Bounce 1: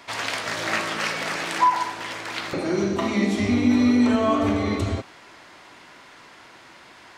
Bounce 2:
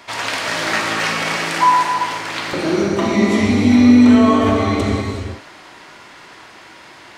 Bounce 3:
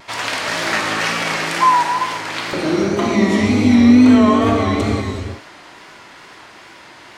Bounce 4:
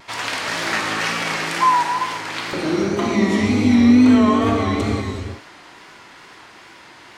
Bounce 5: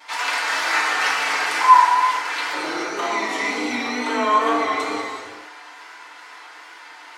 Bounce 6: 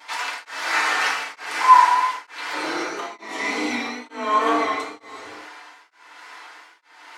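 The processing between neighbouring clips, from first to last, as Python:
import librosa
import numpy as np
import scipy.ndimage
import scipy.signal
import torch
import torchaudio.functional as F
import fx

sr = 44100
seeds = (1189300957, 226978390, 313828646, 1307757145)

y1 = fx.rev_gated(x, sr, seeds[0], gate_ms=410, shape='flat', drr_db=0.5)
y1 = y1 * 10.0 ** (4.0 / 20.0)
y2 = fx.wow_flutter(y1, sr, seeds[1], rate_hz=2.1, depth_cents=60.0)
y3 = fx.peak_eq(y2, sr, hz=610.0, db=-3.5, octaves=0.27)
y3 = y3 * 10.0 ** (-2.5 / 20.0)
y4 = scipy.signal.sosfilt(scipy.signal.butter(2, 760.0, 'highpass', fs=sr, output='sos'), y3)
y4 = fx.rev_fdn(y4, sr, rt60_s=0.63, lf_ratio=0.8, hf_ratio=0.35, size_ms=20.0, drr_db=-5.5)
y4 = y4 * 10.0 ** (-3.0 / 20.0)
y5 = y4 * np.abs(np.cos(np.pi * 1.1 * np.arange(len(y4)) / sr))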